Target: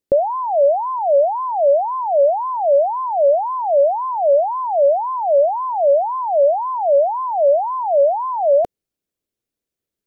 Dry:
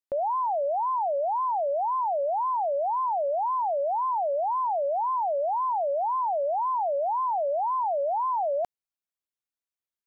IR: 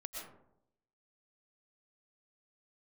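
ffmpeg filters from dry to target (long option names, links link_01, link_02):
-af "lowshelf=frequency=630:width_type=q:width=1.5:gain=10.5,volume=6.5dB"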